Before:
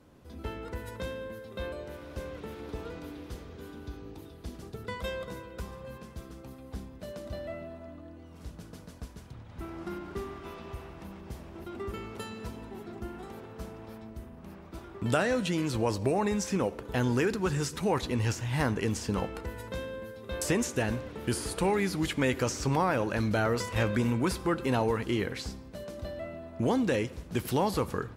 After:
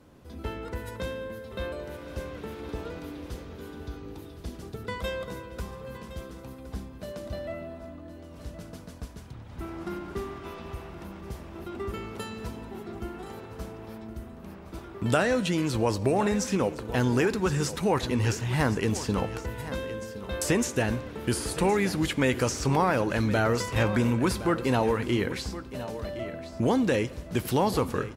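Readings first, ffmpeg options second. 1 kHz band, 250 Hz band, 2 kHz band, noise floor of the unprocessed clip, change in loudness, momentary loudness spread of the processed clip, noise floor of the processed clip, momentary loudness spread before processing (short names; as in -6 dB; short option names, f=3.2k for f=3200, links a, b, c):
+3.0 dB, +3.0 dB, +3.0 dB, -49 dBFS, +3.0 dB, 17 LU, -45 dBFS, 18 LU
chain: -af "aecho=1:1:1066:0.2,volume=3dB"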